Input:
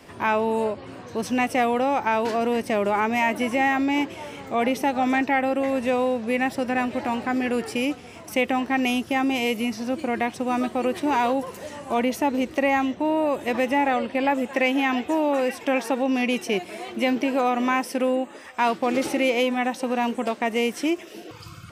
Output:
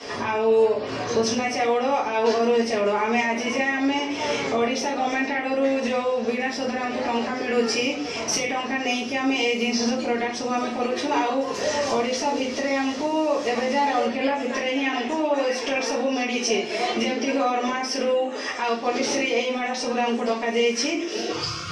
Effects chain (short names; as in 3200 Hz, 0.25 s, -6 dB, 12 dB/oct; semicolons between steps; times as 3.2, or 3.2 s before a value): 11.81–14.05 delta modulation 64 kbps, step -36.5 dBFS; HPF 76 Hz; tone controls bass -7 dB, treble -2 dB; compressor 4:1, threshold -34 dBFS, peak gain reduction 14.5 dB; limiter -27 dBFS, peak gain reduction 8.5 dB; synth low-pass 5600 Hz, resonance Q 4; shoebox room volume 40 m³, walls mixed, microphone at 1.8 m; gain +2.5 dB